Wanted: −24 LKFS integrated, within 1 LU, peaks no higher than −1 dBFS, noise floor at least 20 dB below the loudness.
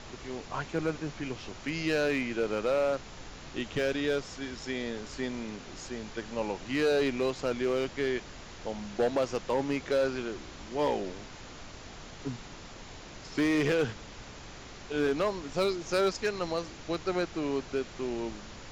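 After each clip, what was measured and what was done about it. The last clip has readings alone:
share of clipped samples 0.7%; peaks flattened at −21.0 dBFS; background noise floor −47 dBFS; target noise floor −52 dBFS; integrated loudness −32.0 LKFS; sample peak −21.0 dBFS; target loudness −24.0 LKFS
→ clipped peaks rebuilt −21 dBFS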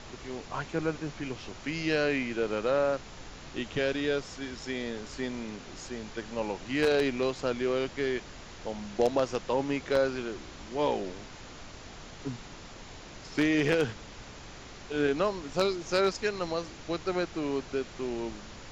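share of clipped samples 0.0%; background noise floor −47 dBFS; target noise floor −51 dBFS
→ noise reduction from a noise print 6 dB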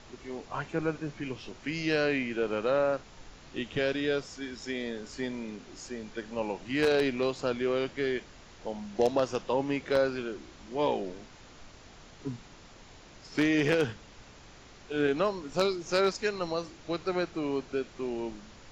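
background noise floor −52 dBFS; integrated loudness −31.0 LKFS; sample peak −12.0 dBFS; target loudness −24.0 LKFS
→ level +7 dB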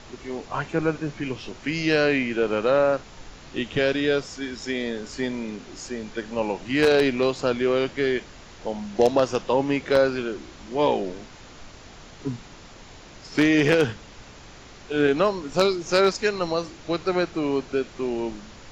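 integrated loudness −24.0 LKFS; sample peak −5.0 dBFS; background noise floor −45 dBFS

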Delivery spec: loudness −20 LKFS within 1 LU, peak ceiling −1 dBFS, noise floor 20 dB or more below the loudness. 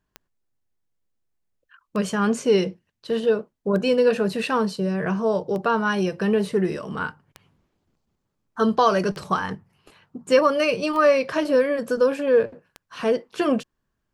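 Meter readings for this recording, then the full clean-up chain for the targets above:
number of clicks 8; integrated loudness −22.5 LKFS; sample peak −6.0 dBFS; target loudness −20.0 LKFS
→ click removal
level +2.5 dB

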